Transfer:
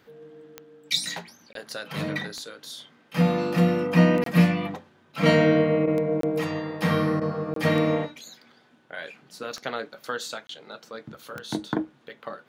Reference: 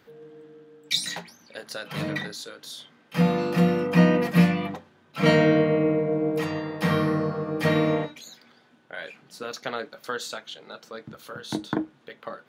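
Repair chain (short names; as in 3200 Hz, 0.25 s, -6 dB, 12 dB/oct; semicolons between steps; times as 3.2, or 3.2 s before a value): de-click; interpolate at 1.53/4.24/6.21/7.54/10.47, 23 ms; interpolate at 5.86/7.2, 13 ms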